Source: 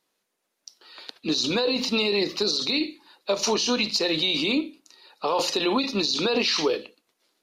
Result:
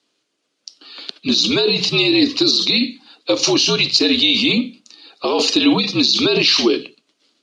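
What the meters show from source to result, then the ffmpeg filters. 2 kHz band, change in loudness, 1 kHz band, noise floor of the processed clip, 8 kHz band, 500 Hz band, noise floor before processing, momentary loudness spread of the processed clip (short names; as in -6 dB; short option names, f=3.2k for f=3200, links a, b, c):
+8.0 dB, +9.0 dB, +2.5 dB, -71 dBFS, +7.0 dB, +5.5 dB, -78 dBFS, 12 LU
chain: -af "highpass=300,equalizer=f=360:t=q:w=4:g=7,equalizer=f=950:t=q:w=4:g=-7,equalizer=f=1.9k:t=q:w=4:g=-4,equalizer=f=3.1k:t=q:w=4:g=5,equalizer=f=4.6k:t=q:w=4:g=4,lowpass=f=8.2k:w=0.5412,lowpass=f=8.2k:w=1.3066,afreqshift=-70,volume=7dB"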